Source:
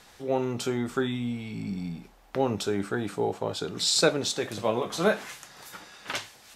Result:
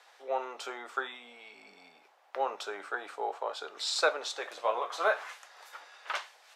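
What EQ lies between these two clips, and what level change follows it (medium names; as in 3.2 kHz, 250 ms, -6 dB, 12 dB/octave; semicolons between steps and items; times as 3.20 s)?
dynamic bell 1.2 kHz, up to +6 dB, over -43 dBFS, Q 1.8; high-pass 550 Hz 24 dB/octave; low-pass 2.6 kHz 6 dB/octave; -2.0 dB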